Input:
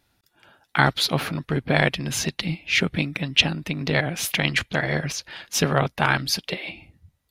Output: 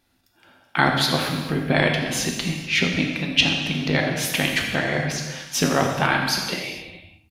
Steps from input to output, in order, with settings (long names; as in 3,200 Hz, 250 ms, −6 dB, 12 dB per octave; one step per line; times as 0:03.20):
parametric band 260 Hz +6 dB 0.27 octaves
mains-hum notches 60/120/180 Hz
single-tap delay 85 ms −14 dB
reverb whose tail is shaped and stops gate 490 ms falling, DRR 1.5 dB
level −1 dB